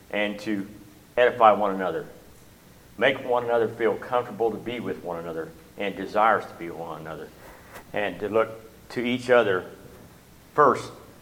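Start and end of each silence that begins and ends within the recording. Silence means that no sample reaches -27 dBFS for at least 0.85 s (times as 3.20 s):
2.02–3.00 s
9.60–10.58 s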